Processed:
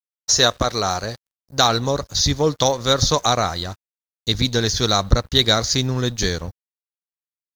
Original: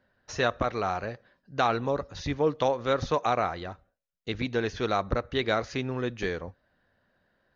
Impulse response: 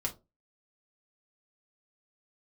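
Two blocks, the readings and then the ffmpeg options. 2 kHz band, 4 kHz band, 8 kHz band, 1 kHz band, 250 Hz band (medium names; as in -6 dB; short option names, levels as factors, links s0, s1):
+6.0 dB, +19.5 dB, no reading, +6.5 dB, +7.5 dB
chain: -af "equalizer=f=6000:w=1.5:g=-7,aexciter=amount=14.3:drive=7.2:freq=4100,aeval=exprs='sgn(val(0))*max(abs(val(0))-0.00376,0)':c=same,asubboost=boost=2.5:cutoff=210,volume=2.37"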